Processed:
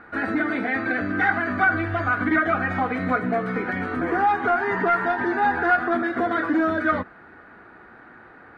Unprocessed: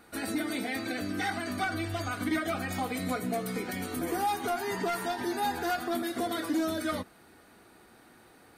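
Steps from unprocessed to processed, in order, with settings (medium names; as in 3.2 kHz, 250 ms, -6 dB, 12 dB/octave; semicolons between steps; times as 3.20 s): resonant low-pass 1.6 kHz, resonance Q 2.7; trim +7 dB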